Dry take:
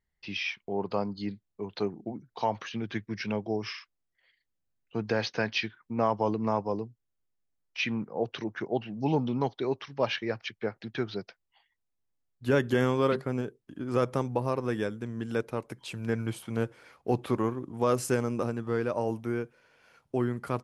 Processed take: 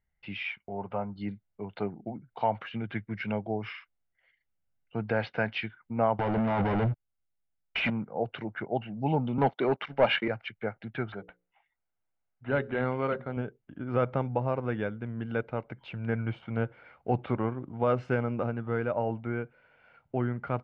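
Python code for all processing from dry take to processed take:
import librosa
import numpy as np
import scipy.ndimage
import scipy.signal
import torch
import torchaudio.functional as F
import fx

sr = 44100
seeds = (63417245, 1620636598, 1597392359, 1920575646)

y = fx.chain(x, sr, fx.dynamic_eq(hz=310.0, q=0.75, threshold_db=-41.0, ratio=4.0, max_db=-5),
    fx.savgol(points=25),
    fx.notch_comb(f0_hz=160.0), at=(0.58, 1.16))
y = fx.chain(y, sr, fx.notch(hz=510.0, q=12.0),
    fx.over_compress(threshold_db=-36.0, ratio=-1.0),
    fx.leveller(passes=5), at=(6.19, 7.9))
y = fx.chain(y, sr, fx.highpass(hz=160.0, slope=24),
    fx.leveller(passes=2), at=(9.38, 10.28))
y = fx.chain(y, sr, fx.low_shelf(hz=360.0, db=-5.5),
    fx.hum_notches(base_hz=60, count=9),
    fx.resample_linear(factor=8), at=(11.12, 13.37))
y = scipy.signal.sosfilt(scipy.signal.butter(4, 2800.0, 'lowpass', fs=sr, output='sos'), y)
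y = y + 0.38 * np.pad(y, (int(1.4 * sr / 1000.0), 0))[:len(y)]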